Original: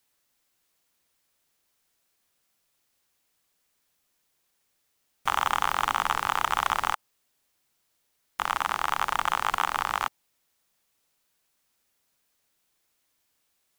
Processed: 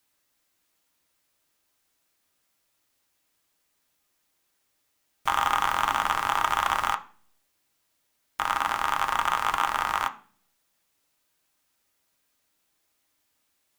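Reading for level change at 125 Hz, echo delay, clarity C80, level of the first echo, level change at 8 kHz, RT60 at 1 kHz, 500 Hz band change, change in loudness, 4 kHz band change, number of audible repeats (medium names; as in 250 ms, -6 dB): +0.5 dB, no echo, 20.5 dB, no echo, 0.0 dB, 0.35 s, +1.0 dB, +1.5 dB, +0.5 dB, no echo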